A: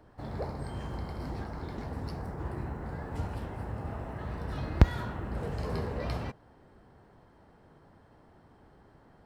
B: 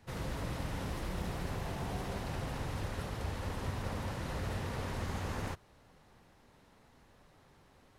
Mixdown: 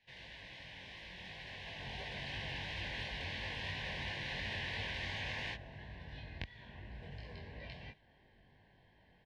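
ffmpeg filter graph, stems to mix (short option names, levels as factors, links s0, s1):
-filter_complex "[0:a]acompressor=threshold=0.01:ratio=3,adelay=1600,volume=0.596[s0];[1:a]lowshelf=f=320:g=-10.5,dynaudnorm=f=230:g=17:m=3.16,volume=0.376[s1];[s0][s1]amix=inputs=2:normalize=0,firequalizer=gain_entry='entry(150,0);entry(290,-5);entry(420,-5);entry(630,-1);entry(1200,-5);entry(1800,9);entry(3100,12);entry(7400,-11);entry(12000,-20)':delay=0.05:min_phase=1,flanger=delay=19:depth=3.6:speed=2.9,asuperstop=centerf=1300:order=8:qfactor=3.5"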